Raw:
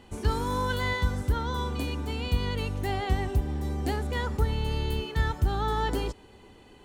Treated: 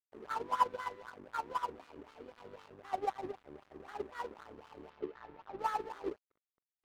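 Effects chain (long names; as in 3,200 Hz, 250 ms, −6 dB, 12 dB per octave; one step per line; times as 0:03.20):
peak hold with a decay on every bin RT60 0.38 s
dynamic equaliser 960 Hz, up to +3 dB, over −40 dBFS, Q 1.8
tube saturation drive 31 dB, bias 0.4
LFO wah 3.9 Hz 330–1,400 Hz, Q 4.5
dead-zone distortion −54.5 dBFS
0:04.90–0:05.59: high-frequency loss of the air 170 metres
expander for the loud parts 2.5 to 1, over −49 dBFS
level +16 dB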